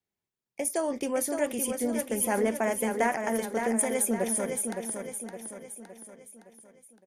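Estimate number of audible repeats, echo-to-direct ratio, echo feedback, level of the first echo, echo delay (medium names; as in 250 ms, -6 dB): 5, -5.0 dB, 48%, -6.0 dB, 564 ms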